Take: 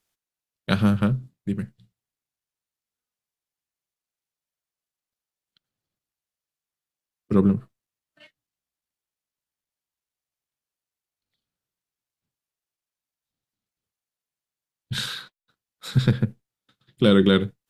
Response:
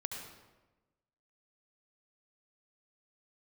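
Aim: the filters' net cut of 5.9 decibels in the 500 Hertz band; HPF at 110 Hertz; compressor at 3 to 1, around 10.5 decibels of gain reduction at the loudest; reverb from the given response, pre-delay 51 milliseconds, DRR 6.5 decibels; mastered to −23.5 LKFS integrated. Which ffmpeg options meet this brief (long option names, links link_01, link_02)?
-filter_complex "[0:a]highpass=110,equalizer=frequency=500:width_type=o:gain=-7.5,acompressor=threshold=-30dB:ratio=3,asplit=2[link_01][link_02];[1:a]atrim=start_sample=2205,adelay=51[link_03];[link_02][link_03]afir=irnorm=-1:irlink=0,volume=-7dB[link_04];[link_01][link_04]amix=inputs=2:normalize=0,volume=10dB"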